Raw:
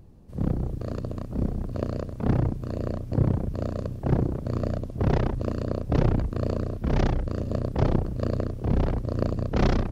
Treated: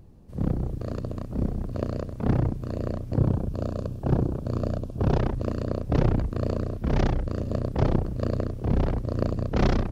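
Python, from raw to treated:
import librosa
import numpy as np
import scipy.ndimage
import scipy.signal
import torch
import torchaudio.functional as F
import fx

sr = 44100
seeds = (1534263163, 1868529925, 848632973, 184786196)

y = fx.peak_eq(x, sr, hz=2000.0, db=-13.5, octaves=0.21, at=(3.18, 5.2))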